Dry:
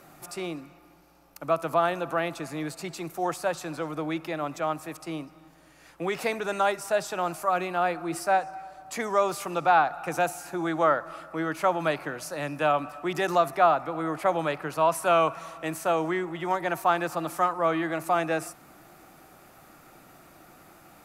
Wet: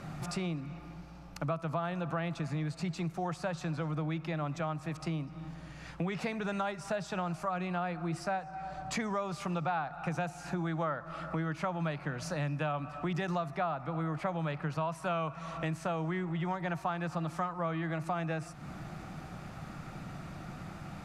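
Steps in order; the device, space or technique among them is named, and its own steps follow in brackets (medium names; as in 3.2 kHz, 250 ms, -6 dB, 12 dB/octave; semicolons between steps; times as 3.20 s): jukebox (low-pass 5.6 kHz 12 dB/octave; resonant low shelf 240 Hz +10 dB, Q 1.5; compression 4:1, threshold -39 dBFS, peak gain reduction 19 dB); trim +5 dB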